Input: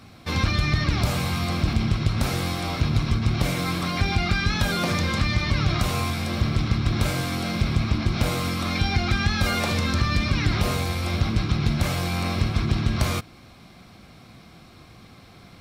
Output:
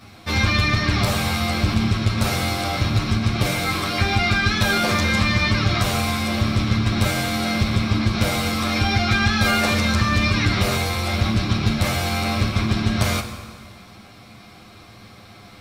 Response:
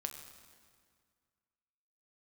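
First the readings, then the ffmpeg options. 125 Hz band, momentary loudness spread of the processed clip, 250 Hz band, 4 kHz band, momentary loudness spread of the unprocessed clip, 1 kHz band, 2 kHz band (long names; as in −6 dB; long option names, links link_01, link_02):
+2.0 dB, 4 LU, +4.0 dB, +5.5 dB, 3 LU, +5.0 dB, +6.5 dB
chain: -filter_complex "[0:a]asplit=2[link_01][link_02];[1:a]atrim=start_sample=2205,lowshelf=frequency=270:gain=-9.5,adelay=10[link_03];[link_02][link_03]afir=irnorm=-1:irlink=0,volume=5dB[link_04];[link_01][link_04]amix=inputs=2:normalize=0"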